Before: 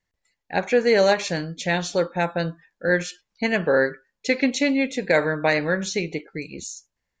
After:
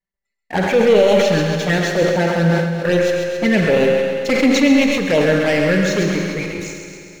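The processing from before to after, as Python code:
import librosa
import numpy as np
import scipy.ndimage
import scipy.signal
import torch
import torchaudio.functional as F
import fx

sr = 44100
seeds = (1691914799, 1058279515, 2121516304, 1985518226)

y = fx.high_shelf(x, sr, hz=3200.0, db=-10.5)
y = fx.leveller(y, sr, passes=3)
y = fx.env_flanger(y, sr, rest_ms=5.1, full_db=-10.0)
y = fx.echo_thinned(y, sr, ms=134, feedback_pct=60, hz=420.0, wet_db=-6.0)
y = fx.rev_schroeder(y, sr, rt60_s=2.5, comb_ms=32, drr_db=4.0)
y = fx.sustainer(y, sr, db_per_s=37.0)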